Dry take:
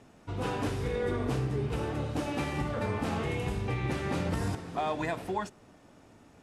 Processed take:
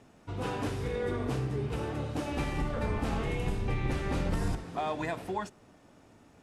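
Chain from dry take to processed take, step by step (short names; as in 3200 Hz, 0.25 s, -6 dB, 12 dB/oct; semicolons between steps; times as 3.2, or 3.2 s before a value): 2.31–4.64 octaver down 2 oct, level +1 dB; gain -1.5 dB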